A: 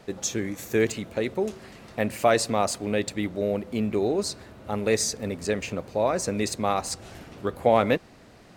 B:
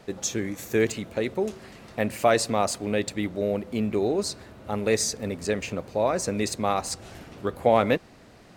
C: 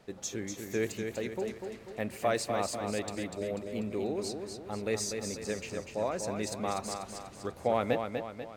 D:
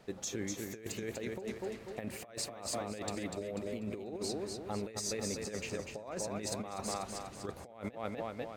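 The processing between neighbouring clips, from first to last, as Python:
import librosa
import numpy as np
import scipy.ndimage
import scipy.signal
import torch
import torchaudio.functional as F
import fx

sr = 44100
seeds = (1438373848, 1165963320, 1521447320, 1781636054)

y1 = x
y2 = fx.echo_feedback(y1, sr, ms=245, feedback_pct=48, wet_db=-6)
y2 = y2 * 10.0 ** (-9.0 / 20.0)
y3 = fx.over_compress(y2, sr, threshold_db=-36.0, ratio=-0.5)
y3 = y3 * 10.0 ** (-2.5 / 20.0)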